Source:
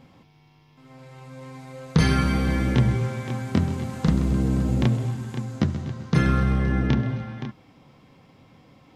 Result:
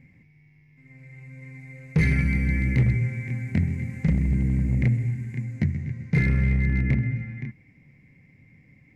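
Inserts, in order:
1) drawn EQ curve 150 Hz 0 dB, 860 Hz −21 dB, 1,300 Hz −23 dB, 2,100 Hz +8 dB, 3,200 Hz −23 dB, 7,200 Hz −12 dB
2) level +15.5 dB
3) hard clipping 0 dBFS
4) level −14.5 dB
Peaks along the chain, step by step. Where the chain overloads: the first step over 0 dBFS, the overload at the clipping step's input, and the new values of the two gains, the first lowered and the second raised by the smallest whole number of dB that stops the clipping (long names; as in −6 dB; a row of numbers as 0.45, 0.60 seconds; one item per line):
−9.0, +6.5, 0.0, −14.5 dBFS
step 2, 6.5 dB
step 2 +8.5 dB, step 4 −7.5 dB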